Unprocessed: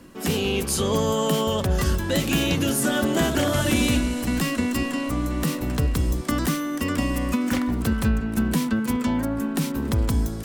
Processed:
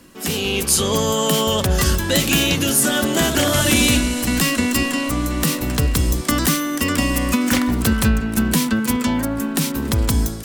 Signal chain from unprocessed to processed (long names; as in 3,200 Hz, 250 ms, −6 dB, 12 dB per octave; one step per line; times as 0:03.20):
high-shelf EQ 2,000 Hz +8 dB
automatic gain control gain up to 7.5 dB
level −1.5 dB